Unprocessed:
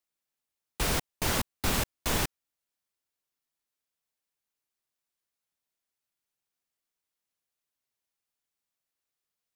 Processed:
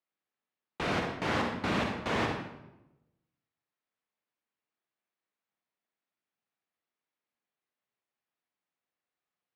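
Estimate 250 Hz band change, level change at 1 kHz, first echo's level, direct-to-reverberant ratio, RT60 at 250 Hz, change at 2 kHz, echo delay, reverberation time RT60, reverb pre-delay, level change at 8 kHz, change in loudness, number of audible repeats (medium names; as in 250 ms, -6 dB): +3.0 dB, +2.5 dB, no echo, 1.0 dB, 1.2 s, +1.0 dB, no echo, 0.95 s, 37 ms, -17.0 dB, -2.0 dB, no echo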